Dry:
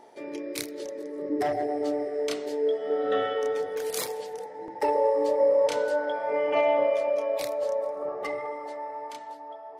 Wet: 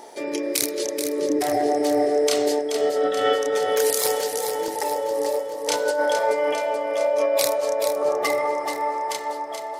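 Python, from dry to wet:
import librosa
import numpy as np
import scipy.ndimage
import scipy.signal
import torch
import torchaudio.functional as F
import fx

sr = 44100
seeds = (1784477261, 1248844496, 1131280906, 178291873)

p1 = fx.bass_treble(x, sr, bass_db=-5, treble_db=10)
p2 = fx.over_compress(p1, sr, threshold_db=-29.0, ratio=-1.0)
p3 = p2 + fx.echo_feedback(p2, sr, ms=430, feedback_pct=57, wet_db=-7.5, dry=0)
y = F.gain(torch.from_numpy(p3), 7.0).numpy()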